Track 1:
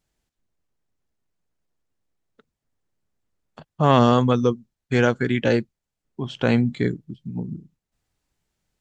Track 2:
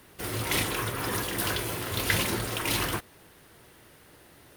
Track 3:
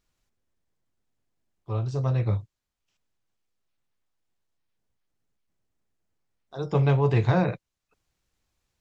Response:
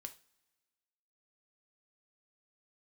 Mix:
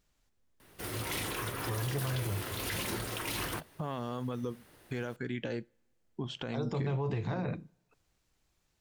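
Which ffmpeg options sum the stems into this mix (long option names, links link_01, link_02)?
-filter_complex "[0:a]acompressor=threshold=-25dB:ratio=10,volume=-6.5dB,asplit=2[link_01][link_02];[link_02]volume=-7dB[link_03];[1:a]adelay=600,volume=-5.5dB[link_04];[2:a]acompressor=threshold=-27dB:ratio=6,volume=-2dB,asplit=2[link_05][link_06];[link_06]volume=-4.5dB[link_07];[3:a]atrim=start_sample=2205[link_08];[link_03][link_07]amix=inputs=2:normalize=0[link_09];[link_09][link_08]afir=irnorm=-1:irlink=0[link_10];[link_01][link_04][link_05][link_10]amix=inputs=4:normalize=0,alimiter=level_in=1.5dB:limit=-24dB:level=0:latency=1:release=35,volume=-1.5dB"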